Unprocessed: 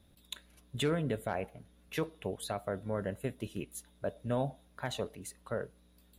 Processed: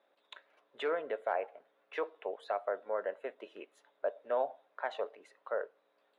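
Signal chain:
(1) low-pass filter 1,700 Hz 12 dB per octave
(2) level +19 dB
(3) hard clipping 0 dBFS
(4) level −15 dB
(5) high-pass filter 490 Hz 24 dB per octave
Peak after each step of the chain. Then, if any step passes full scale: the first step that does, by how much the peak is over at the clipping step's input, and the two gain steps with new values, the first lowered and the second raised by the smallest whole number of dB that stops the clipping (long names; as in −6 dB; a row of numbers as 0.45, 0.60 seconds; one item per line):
−21.5, −2.5, −2.5, −17.5, −19.5 dBFS
no step passes full scale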